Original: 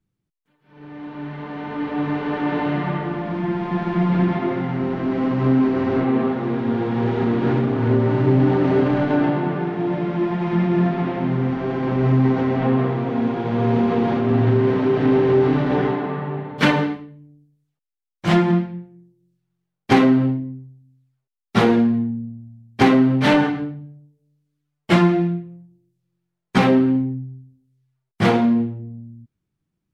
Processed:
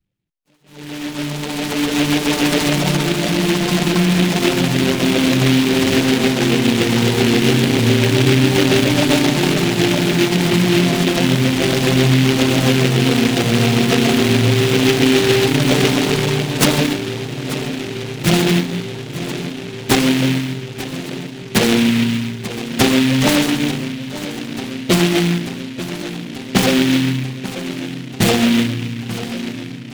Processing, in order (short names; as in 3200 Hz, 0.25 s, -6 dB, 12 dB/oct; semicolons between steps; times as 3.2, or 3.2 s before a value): LFO low-pass sine 7.3 Hz 520–5300 Hz; spectral noise reduction 9 dB; in parallel at -7 dB: sample-and-hold 37×; on the sum: compressor 5:1, threshold -16 dBFS, peak gain reduction 10.5 dB; on a send: darkening echo 0.888 s, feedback 81%, low-pass 4100 Hz, level -13 dB; on the sum: noise-modulated delay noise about 2500 Hz, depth 0.19 ms; gain +4.5 dB